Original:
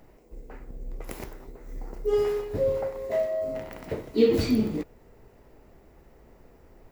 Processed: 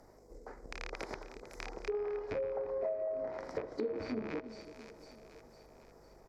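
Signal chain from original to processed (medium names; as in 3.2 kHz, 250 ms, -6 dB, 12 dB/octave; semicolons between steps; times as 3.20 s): rattle on loud lows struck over -35 dBFS, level -18 dBFS; in parallel at -11 dB: crossover distortion -38 dBFS; on the sum: band-stop 2.7 kHz, Q 9.6; tempo 1.1×; hum 50 Hz, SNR 26 dB; three-band isolator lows -13 dB, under 350 Hz, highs -14 dB, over 2.4 kHz; compression 12:1, threshold -33 dBFS, peak gain reduction 18 dB; resonant high shelf 3.9 kHz +10.5 dB, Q 3; on a send: two-band feedback delay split 480 Hz, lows 333 ms, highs 504 ms, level -13 dB; on the sum: low-pass that closes with the level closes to 1.4 kHz, closed at -32.5 dBFS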